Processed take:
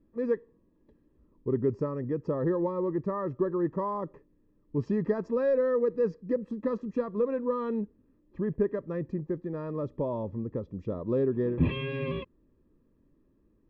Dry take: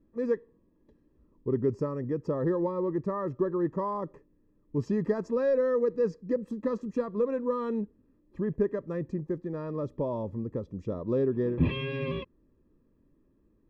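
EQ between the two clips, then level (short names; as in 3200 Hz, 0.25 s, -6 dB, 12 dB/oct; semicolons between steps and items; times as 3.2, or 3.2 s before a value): LPF 3900 Hz 12 dB/oct; 0.0 dB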